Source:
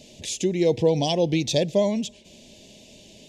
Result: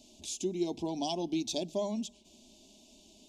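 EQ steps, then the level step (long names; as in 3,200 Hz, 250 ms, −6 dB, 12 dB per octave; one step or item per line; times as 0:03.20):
mains-hum notches 50/100/150/200 Hz
phaser with its sweep stopped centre 500 Hz, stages 6
−7.0 dB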